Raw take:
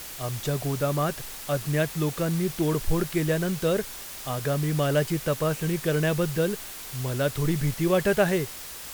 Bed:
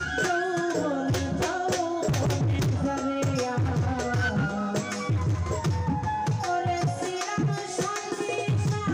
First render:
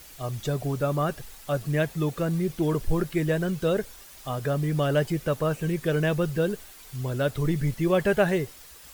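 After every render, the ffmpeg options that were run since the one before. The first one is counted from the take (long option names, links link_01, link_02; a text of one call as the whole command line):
ffmpeg -i in.wav -af "afftdn=noise_reduction=10:noise_floor=-39" out.wav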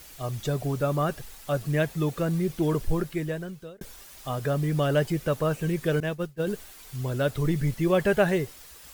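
ffmpeg -i in.wav -filter_complex "[0:a]asettb=1/sr,asplit=3[link_01][link_02][link_03];[link_01]atrim=end=6.004[link_04];[link_02]atrim=start=6:end=6.47,asetpts=PTS-STARTPTS,afade=type=in:duration=0.004:curve=qsin,afade=type=out:start_time=0.466:duration=0.004:curve=qsin,agate=range=-33dB:threshold=-19dB:ratio=3:release=100:detection=peak[link_05];[link_03]atrim=start=6.466[link_06];[link_04][link_05]acrossfade=duration=0.004:curve1=hsin:curve2=qsin[link_07];[link_07][link_06]acrossfade=duration=0.004:curve1=qsin:curve2=hsin,asplit=2[link_08][link_09];[link_08]atrim=end=3.81,asetpts=PTS-STARTPTS,afade=type=out:start_time=2.81:duration=1[link_10];[link_09]atrim=start=3.81,asetpts=PTS-STARTPTS,afade=type=in:duration=0.004:curve=hsin[link_11];[link_10][link_11]concat=n=2:v=0:a=1" out.wav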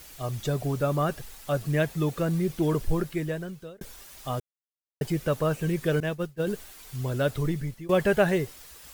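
ffmpeg -i in.wav -filter_complex "[0:a]asplit=4[link_01][link_02][link_03][link_04];[link_01]atrim=end=4.4,asetpts=PTS-STARTPTS,afade=type=out:start_time=4.396:duration=0.004:curve=hsin[link_05];[link_02]atrim=start=4.4:end=5.01,asetpts=PTS-STARTPTS,volume=0[link_06];[link_03]atrim=start=5.01:end=7.89,asetpts=PTS-STARTPTS,afade=type=in:duration=0.004:curve=hsin,afade=type=out:start_time=2.33:duration=0.55:silence=0.1[link_07];[link_04]atrim=start=7.89,asetpts=PTS-STARTPTS,afade=type=in:duration=0.004:curve=hsin:silence=0.1[link_08];[link_05][link_06][link_07][link_08]concat=n=4:v=0:a=1" out.wav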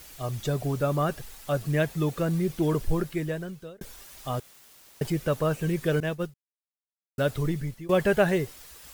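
ffmpeg -i in.wav -filter_complex "[0:a]asettb=1/sr,asplit=3[link_01][link_02][link_03];[link_01]atrim=end=4.344[link_04];[link_02]atrim=start=4.34:end=5.1,asetpts=PTS-STARTPTS,afade=type=in:duration=0.004:curve=qsin,afade=type=out:start_time=0.756:duration=0.004:curve=qsin,aeval=exprs='val(0)+0.5*0.00794*sgn(val(0))':channel_layout=same[link_05];[link_03]atrim=start=5.096[link_06];[link_04][link_05]acrossfade=duration=0.004:curve1=hsin:curve2=qsin[link_07];[link_07][link_06]acrossfade=duration=0.004:curve1=qsin:curve2=hsin,asplit=3[link_08][link_09][link_10];[link_08]atrim=end=6.34,asetpts=PTS-STARTPTS,afade=type=out:start_time=6.336:duration=0.004:curve=hsin[link_11];[link_09]atrim=start=6.34:end=7.18,asetpts=PTS-STARTPTS,volume=0[link_12];[link_10]atrim=start=7.18,asetpts=PTS-STARTPTS,afade=type=in:duration=0.004:curve=hsin[link_13];[link_11][link_12][link_13]concat=n=3:v=0:a=1" out.wav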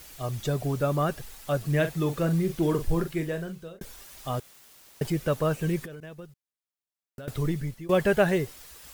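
ffmpeg -i in.wav -filter_complex "[0:a]asettb=1/sr,asplit=3[link_01][link_02][link_03];[link_01]atrim=end=1.664[link_04];[link_02]atrim=start=1.66:end=3.79,asetpts=PTS-STARTPTS,afade=type=in:duration=0.004:curve=qsin,afade=type=out:start_time=2.126:duration=0.004:curve=qsin,asplit=2[link_05][link_06];[link_06]adelay=42,volume=-9.5dB[link_07];[link_05][link_07]amix=inputs=2:normalize=0,atrim=end_sample=93933[link_08];[link_03]atrim=start=3.786[link_09];[link_04][link_08]acrossfade=duration=0.004:curve1=hsin:curve2=qsin[link_10];[link_10][link_09]acrossfade=duration=0.004:curve1=qsin:curve2=hsin,asettb=1/sr,asplit=3[link_11][link_12][link_13];[link_11]atrim=end=5.854[link_14];[link_12]atrim=start=5.85:end=7.28,asetpts=PTS-STARTPTS,afade=type=in:duration=0.004:curve=qsin,afade=type=out:start_time=1.426:duration=0.004:curve=qsin,acompressor=threshold=-37dB:ratio=16:attack=3.2:release=140:knee=1:detection=peak[link_15];[link_13]atrim=start=7.276[link_16];[link_14][link_15]acrossfade=duration=0.004:curve1=hsin:curve2=qsin[link_17];[link_17][link_16]acrossfade=duration=0.004:curve1=qsin:curve2=hsin" out.wav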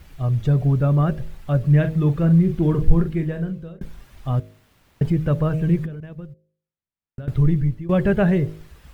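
ffmpeg -i in.wav -af "bass=frequency=250:gain=14,treble=frequency=4000:gain=-14,bandreject=frequency=52.68:width_type=h:width=4,bandreject=frequency=105.36:width_type=h:width=4,bandreject=frequency=158.04:width_type=h:width=4,bandreject=frequency=210.72:width_type=h:width=4,bandreject=frequency=263.4:width_type=h:width=4,bandreject=frequency=316.08:width_type=h:width=4,bandreject=frequency=368.76:width_type=h:width=4,bandreject=frequency=421.44:width_type=h:width=4,bandreject=frequency=474.12:width_type=h:width=4,bandreject=frequency=526.8:width_type=h:width=4,bandreject=frequency=579.48:width_type=h:width=4,bandreject=frequency=632.16:width_type=h:width=4" out.wav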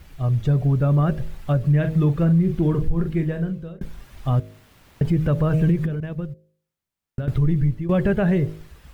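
ffmpeg -i in.wav -af "dynaudnorm=framelen=390:gausssize=7:maxgain=11.5dB,alimiter=limit=-11.5dB:level=0:latency=1:release=178" out.wav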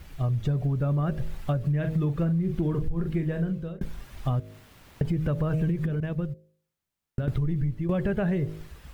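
ffmpeg -i in.wav -af "acompressor=threshold=-23dB:ratio=6" out.wav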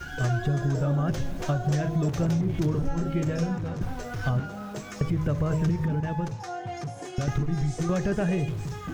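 ffmpeg -i in.wav -i bed.wav -filter_complex "[1:a]volume=-8.5dB[link_01];[0:a][link_01]amix=inputs=2:normalize=0" out.wav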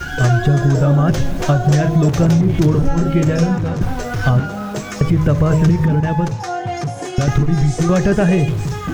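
ffmpeg -i in.wav -af "volume=12dB,alimiter=limit=-3dB:level=0:latency=1" out.wav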